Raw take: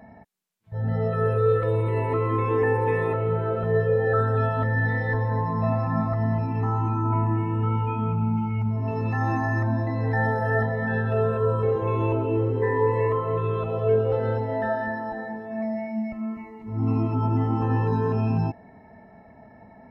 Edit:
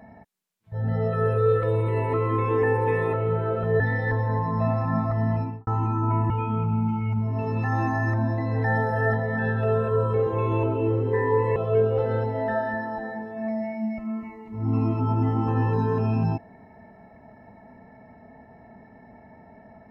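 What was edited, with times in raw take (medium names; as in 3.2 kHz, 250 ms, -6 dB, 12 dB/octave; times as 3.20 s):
3.80–4.82 s: delete
6.39–6.69 s: studio fade out
7.32–7.79 s: delete
13.05–13.70 s: delete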